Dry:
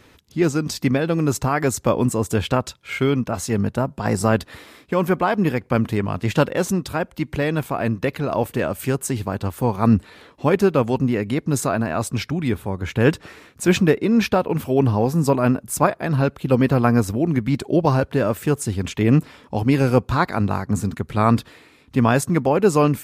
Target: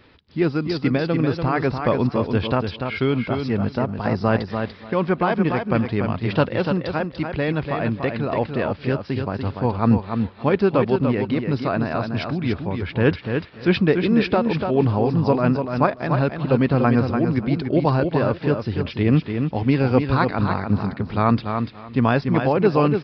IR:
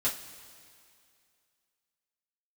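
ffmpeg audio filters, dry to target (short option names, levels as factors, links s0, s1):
-filter_complex "[0:a]asplit=2[s0][s1];[s1]aecho=0:1:291|582|873:0.501|0.0902|0.0162[s2];[s0][s2]amix=inputs=2:normalize=0,aresample=11025,aresample=44100,asplit=2[s3][s4];[s4]aecho=0:1:268:0.0668[s5];[s3][s5]amix=inputs=2:normalize=0,volume=0.841"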